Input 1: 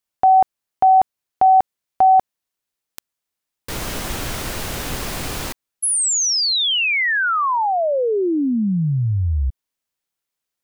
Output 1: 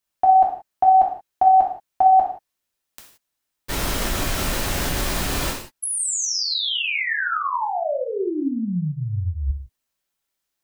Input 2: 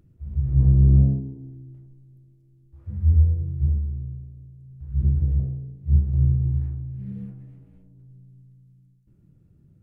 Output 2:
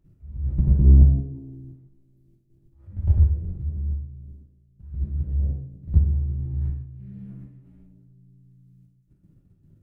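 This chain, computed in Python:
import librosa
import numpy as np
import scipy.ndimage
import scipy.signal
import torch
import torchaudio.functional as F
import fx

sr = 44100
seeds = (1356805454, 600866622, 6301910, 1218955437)

y = fx.level_steps(x, sr, step_db=14)
y = fx.rev_gated(y, sr, seeds[0], gate_ms=200, shape='falling', drr_db=-2.0)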